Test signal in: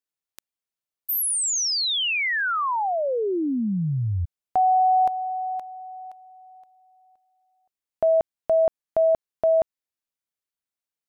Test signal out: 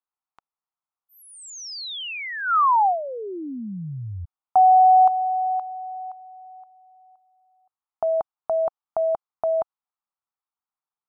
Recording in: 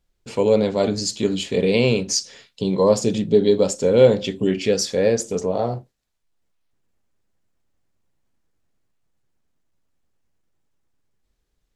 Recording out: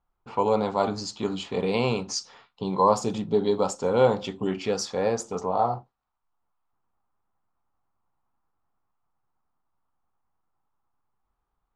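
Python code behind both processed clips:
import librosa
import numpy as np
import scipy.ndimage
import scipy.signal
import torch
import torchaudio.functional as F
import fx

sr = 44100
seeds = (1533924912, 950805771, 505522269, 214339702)

y = fx.env_lowpass(x, sr, base_hz=2400.0, full_db=-13.5)
y = fx.band_shelf(y, sr, hz=1000.0, db=14.5, octaves=1.1)
y = F.gain(torch.from_numpy(y), -7.5).numpy()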